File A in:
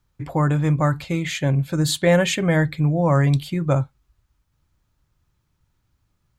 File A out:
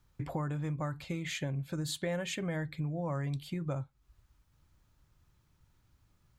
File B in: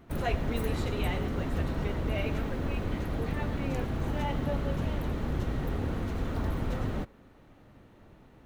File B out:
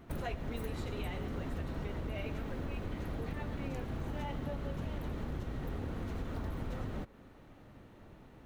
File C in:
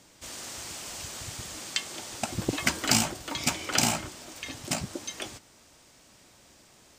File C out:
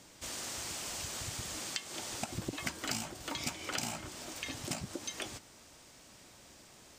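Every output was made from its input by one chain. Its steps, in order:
compression 4:1, threshold -36 dBFS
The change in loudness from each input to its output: -16.0 LU, -8.0 LU, -8.5 LU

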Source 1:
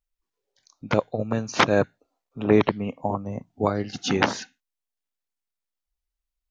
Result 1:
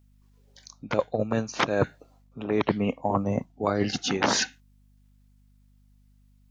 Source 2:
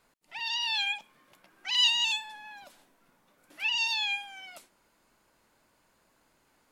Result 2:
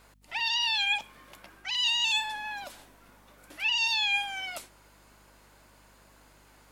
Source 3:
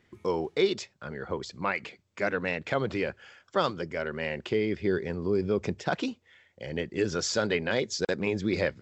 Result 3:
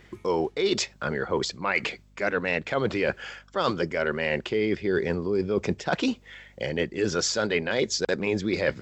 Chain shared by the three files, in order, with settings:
bass shelf 180 Hz -6 dB; reverse; compression 10:1, threshold -34 dBFS; reverse; hum 50 Hz, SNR 30 dB; normalise loudness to -27 LUFS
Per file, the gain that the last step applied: +13.0 dB, +10.0 dB, +12.5 dB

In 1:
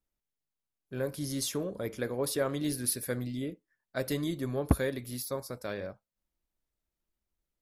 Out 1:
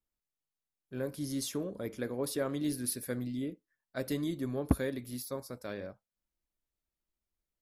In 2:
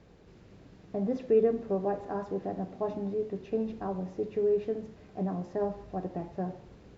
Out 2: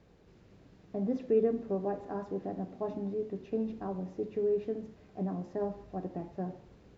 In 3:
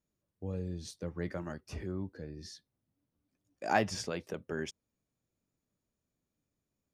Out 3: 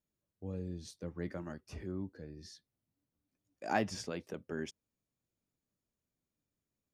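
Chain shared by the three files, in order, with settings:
dynamic bell 260 Hz, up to +5 dB, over -45 dBFS, Q 1.6; trim -4.5 dB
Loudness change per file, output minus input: -2.5 LU, -2.5 LU, -3.5 LU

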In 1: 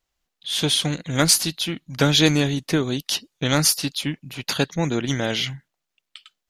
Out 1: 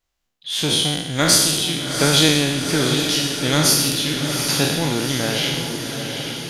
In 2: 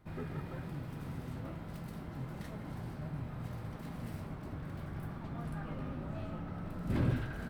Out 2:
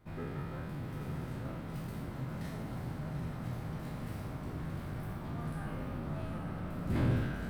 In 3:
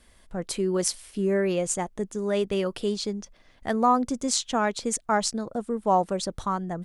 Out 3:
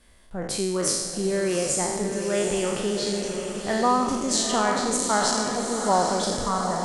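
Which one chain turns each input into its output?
spectral sustain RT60 1.10 s; on a send: echo that smears into a reverb 784 ms, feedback 58%, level -6 dB; on the sum: trim -1.5 dB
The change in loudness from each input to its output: +3.5 LU, +2.0 LU, +2.5 LU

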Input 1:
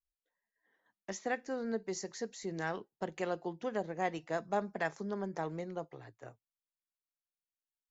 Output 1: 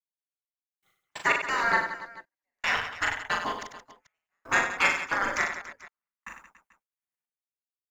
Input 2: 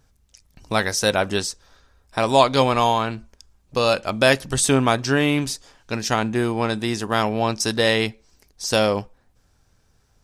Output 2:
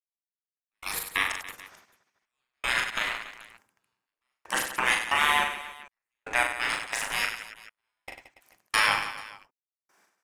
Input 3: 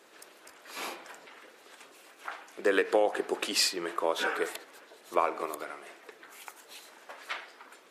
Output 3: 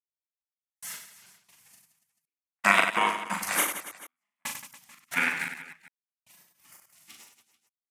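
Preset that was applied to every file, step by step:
spectral gate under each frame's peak -20 dB weak; waveshaping leveller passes 1; in parallel at -0.5 dB: peak limiter -18.5 dBFS; on the sum: ten-band graphic EQ 1 kHz +4 dB, 2 kHz +7 dB, 4 kHz -7 dB; trance gate ".....x.x.xx" 91 bpm -60 dB; on a send: reverse bouncing-ball echo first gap 40 ms, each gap 1.4×, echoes 5; on the sum: normalise loudness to -27 LUFS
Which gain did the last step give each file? +14.5 dB, -2.5 dB, +4.5 dB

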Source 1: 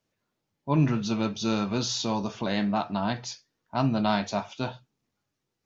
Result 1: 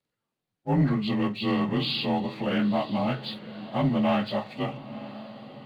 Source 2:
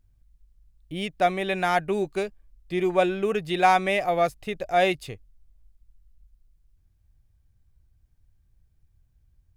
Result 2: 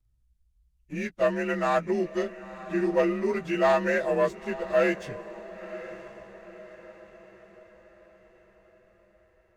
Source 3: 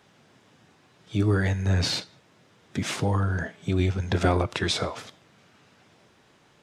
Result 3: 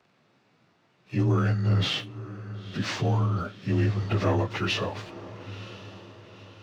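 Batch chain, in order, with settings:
frequency axis rescaled in octaves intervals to 89%; waveshaping leveller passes 1; echo that smears into a reverb 974 ms, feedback 47%, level -15 dB; normalise loudness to -27 LUFS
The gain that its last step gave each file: -0.5 dB, -3.5 dB, -2.0 dB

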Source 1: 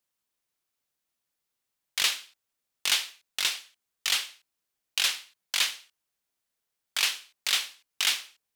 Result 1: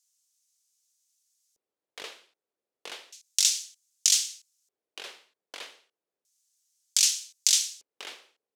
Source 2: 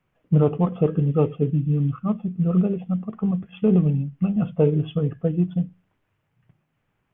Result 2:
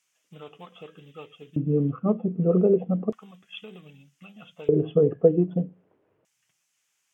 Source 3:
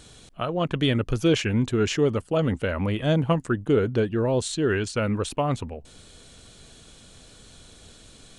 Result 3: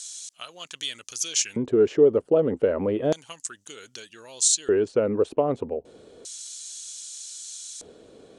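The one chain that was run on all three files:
treble shelf 4.4 kHz +12 dB; compression 2:1, threshold -25 dBFS; LFO band-pass square 0.32 Hz 440–6400 Hz; normalise loudness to -24 LUFS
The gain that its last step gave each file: +9.0 dB, +15.0 dB, +11.0 dB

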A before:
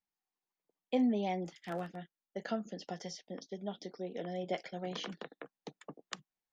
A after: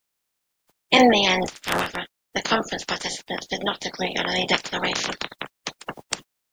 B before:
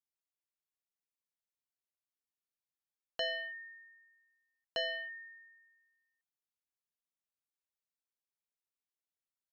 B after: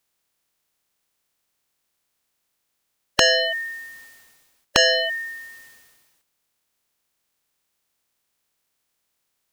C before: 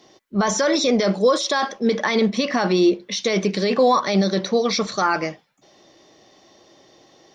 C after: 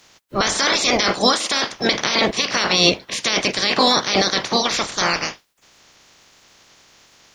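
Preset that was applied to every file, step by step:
spectral peaks clipped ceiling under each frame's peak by 28 dB; peak normalisation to -1.5 dBFS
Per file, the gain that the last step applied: +15.5 dB, +20.5 dB, +1.0 dB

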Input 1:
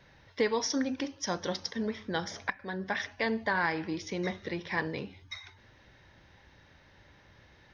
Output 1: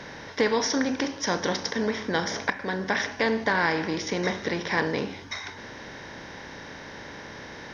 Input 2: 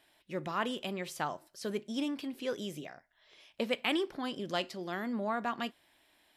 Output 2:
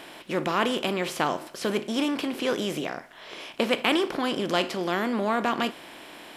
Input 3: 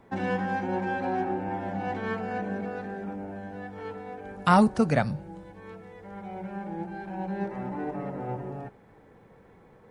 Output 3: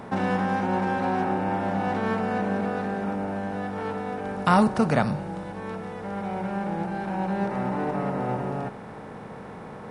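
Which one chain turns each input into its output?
spectral levelling over time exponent 0.6; normalise loudness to -27 LUFS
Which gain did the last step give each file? +3.0 dB, +6.0 dB, -1.0 dB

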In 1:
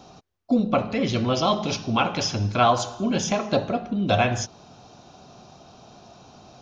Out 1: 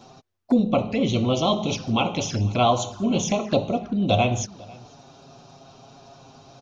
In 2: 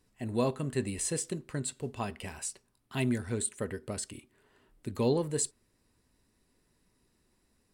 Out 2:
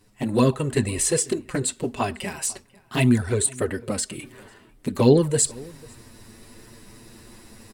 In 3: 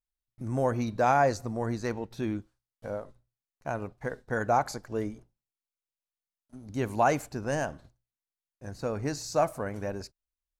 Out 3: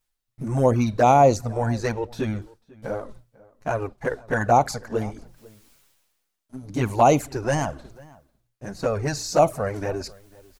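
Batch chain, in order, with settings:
reverse; upward compressor, threshold -43 dBFS; reverse; touch-sensitive flanger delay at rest 9.7 ms, full sweep at -21.5 dBFS; echo from a far wall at 85 m, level -23 dB; normalise loudness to -23 LUFS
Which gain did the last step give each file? +2.0 dB, +14.0 dB, +10.5 dB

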